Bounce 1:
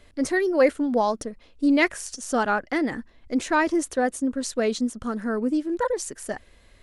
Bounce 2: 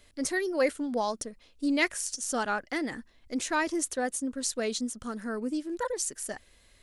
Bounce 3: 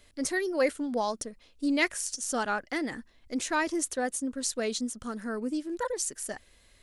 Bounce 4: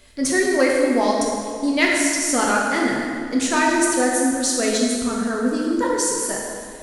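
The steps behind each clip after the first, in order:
high-shelf EQ 3,100 Hz +11.5 dB; level −8 dB
no processing that can be heard
in parallel at −10 dB: soft clipping −25.5 dBFS, distortion −13 dB; on the sum: dense smooth reverb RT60 2.2 s, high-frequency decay 0.75×, DRR −3 dB; level +5 dB

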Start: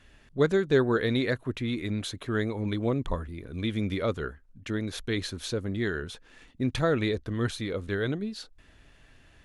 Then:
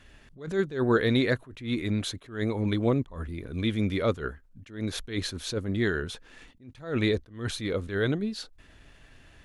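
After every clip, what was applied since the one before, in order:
level that may rise only so fast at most 140 dB per second
level +3 dB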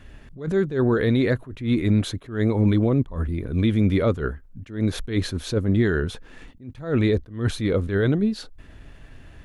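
parametric band 5,700 Hz −5.5 dB 2.7 octaves
brickwall limiter −20 dBFS, peak gain reduction 8 dB
low-shelf EQ 320 Hz +5.5 dB
level +5.5 dB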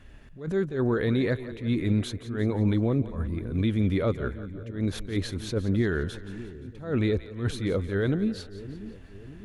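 echo with a time of its own for lows and highs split 430 Hz, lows 597 ms, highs 174 ms, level −14 dB
level −5 dB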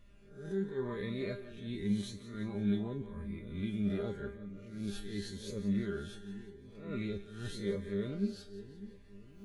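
peak hold with a rise ahead of every peak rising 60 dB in 0.59 s
tuned comb filter 200 Hz, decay 0.28 s, harmonics all, mix 90%
phaser whose notches keep moving one way rising 0.87 Hz

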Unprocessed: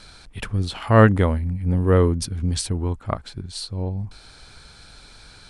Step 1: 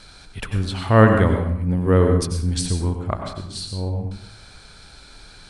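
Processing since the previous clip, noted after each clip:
dense smooth reverb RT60 0.68 s, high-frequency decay 0.65×, pre-delay 80 ms, DRR 4 dB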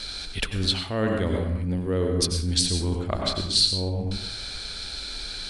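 dynamic equaliser 1,600 Hz, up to −4 dB, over −33 dBFS, Q 0.84
reversed playback
downward compressor 5 to 1, threshold −27 dBFS, peak gain reduction 17 dB
reversed playback
octave-band graphic EQ 125/1,000/4,000 Hz −9/−6/+8 dB
level +7 dB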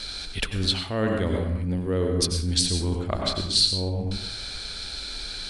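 no processing that can be heard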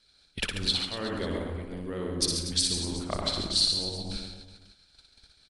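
noise gate −30 dBFS, range −23 dB
harmonic and percussive parts rebalanced harmonic −13 dB
on a send: reverse bouncing-ball delay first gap 60 ms, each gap 1.3×, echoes 5
on the sum: level −2.5 dB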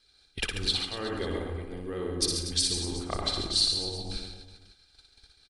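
comb filter 2.5 ms, depth 40%
level −1 dB

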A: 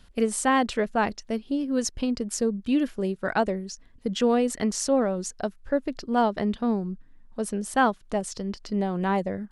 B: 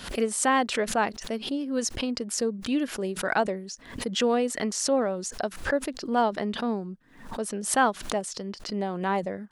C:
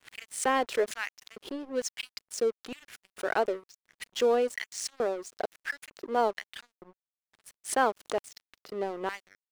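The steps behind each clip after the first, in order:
high-pass filter 300 Hz 6 dB per octave; background raised ahead of every attack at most 100 dB per second
auto-filter high-pass square 1.1 Hz 390–2,000 Hz; dead-zone distortion −36.5 dBFS; one half of a high-frequency compander decoder only; level −4.5 dB

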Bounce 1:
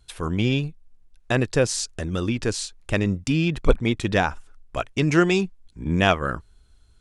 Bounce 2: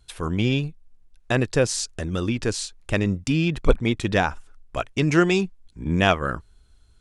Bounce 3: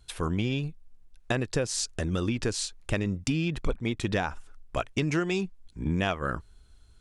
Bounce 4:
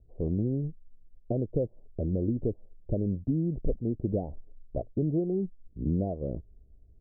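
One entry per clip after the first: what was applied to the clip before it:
no processing that can be heard
downward compressor 6 to 1, threshold −24 dBFS, peak gain reduction 13.5 dB
Butterworth low-pass 640 Hz 48 dB per octave

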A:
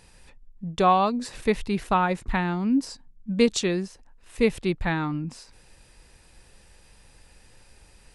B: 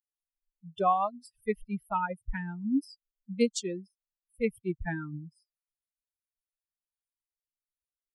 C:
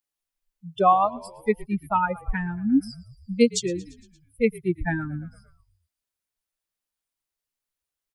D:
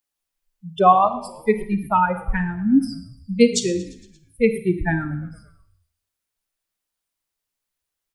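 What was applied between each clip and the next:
spectral dynamics exaggerated over time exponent 3; notch filter 3,900 Hz, Q 24; dynamic equaliser 3,000 Hz, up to −5 dB, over −50 dBFS, Q 1.7; level −2.5 dB
echo with shifted repeats 115 ms, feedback 63%, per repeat −49 Hz, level −21 dB; level +7.5 dB
convolution reverb RT60 0.60 s, pre-delay 33 ms, DRR 10 dB; level +4 dB

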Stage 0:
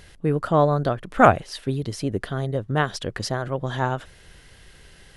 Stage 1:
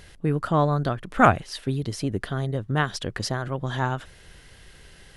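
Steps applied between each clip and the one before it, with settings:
dynamic equaliser 540 Hz, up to −6 dB, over −33 dBFS, Q 1.3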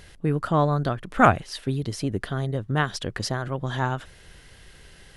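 no processing that can be heard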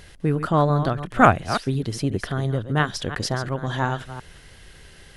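delay that plays each chunk backwards 175 ms, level −10.5 dB
level +2 dB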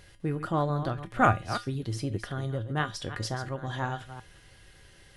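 tuned comb filter 110 Hz, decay 0.25 s, harmonics odd, mix 70%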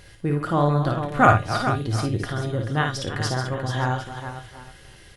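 multi-tap delay 55/436/755 ms −4.5/−8.5/−19 dB
level +5.5 dB

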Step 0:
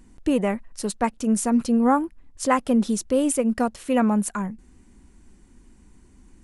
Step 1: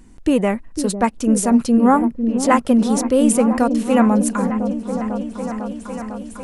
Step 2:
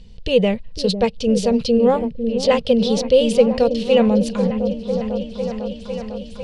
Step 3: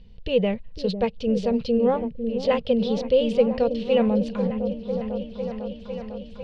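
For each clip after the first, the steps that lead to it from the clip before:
echo whose low-pass opens from repeat to repeat 501 ms, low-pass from 400 Hz, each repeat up 1 octave, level −6 dB; level +5 dB
drawn EQ curve 180 Hz 0 dB, 320 Hz −23 dB, 460 Hz +3 dB, 720 Hz −10 dB, 1,300 Hz −18 dB, 2,100 Hz −9 dB, 3,000 Hz +5 dB, 4,600 Hz +5 dB, 7,000 Hz −15 dB, 13,000 Hz −27 dB; level +5.5 dB
low-pass filter 3,300 Hz 12 dB per octave; level −5.5 dB

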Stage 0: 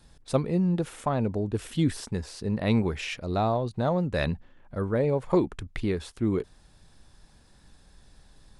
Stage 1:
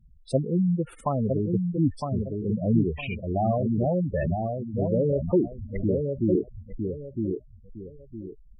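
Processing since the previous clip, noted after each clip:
feedback echo with a low-pass in the loop 959 ms, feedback 31%, low-pass 1,800 Hz, level −4 dB
gate on every frequency bin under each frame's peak −10 dB strong
level +1.5 dB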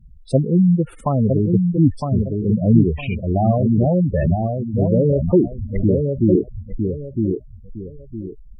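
low-shelf EQ 400 Hz +7.5 dB
level +3 dB

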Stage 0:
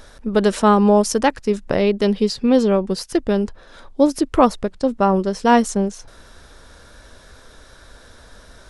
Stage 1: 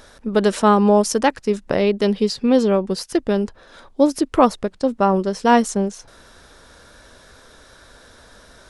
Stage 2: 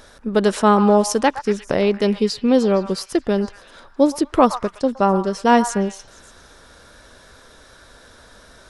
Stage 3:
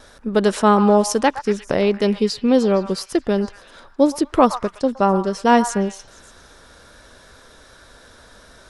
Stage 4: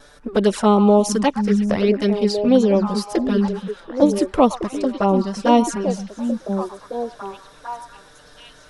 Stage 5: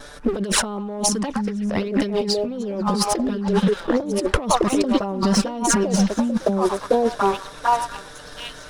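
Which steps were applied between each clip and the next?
low-shelf EQ 76 Hz −9 dB
echo through a band-pass that steps 116 ms, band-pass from 1,100 Hz, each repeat 0.7 octaves, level −9 dB
noise gate with hold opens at −39 dBFS
flanger swept by the level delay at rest 7.3 ms, full sweep at −11.5 dBFS; on a send: echo through a band-pass that steps 729 ms, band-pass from 170 Hz, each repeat 1.4 octaves, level −3 dB; on the sum: level +1.5 dB
leveller curve on the samples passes 1; compressor whose output falls as the input rises −24 dBFS, ratio −1; level +2 dB

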